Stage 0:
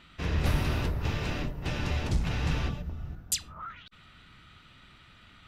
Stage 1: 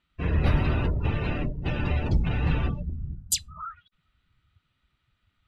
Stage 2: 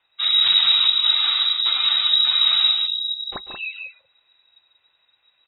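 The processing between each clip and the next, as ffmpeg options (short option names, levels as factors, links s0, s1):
-af "afftdn=nr=25:nf=-38,volume=1.68"
-filter_complex "[0:a]asoftclip=type=tanh:threshold=0.119,asplit=2[s0][s1];[s1]aecho=0:1:142.9|183.7:0.316|0.447[s2];[s0][s2]amix=inputs=2:normalize=0,lowpass=f=3300:t=q:w=0.5098,lowpass=f=3300:t=q:w=0.6013,lowpass=f=3300:t=q:w=0.9,lowpass=f=3300:t=q:w=2.563,afreqshift=-3900,volume=2.24"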